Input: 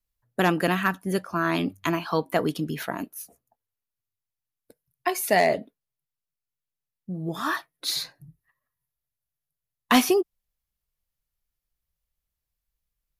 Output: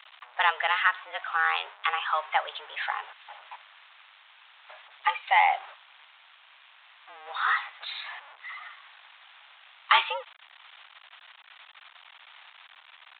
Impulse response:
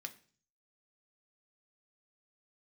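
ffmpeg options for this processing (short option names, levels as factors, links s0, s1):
-af "aeval=exprs='val(0)+0.5*0.0211*sgn(val(0))':c=same,highpass=f=680:w=0.5412,highpass=f=680:w=1.3066,afreqshift=140,aresample=8000,aresample=44100,volume=1.19"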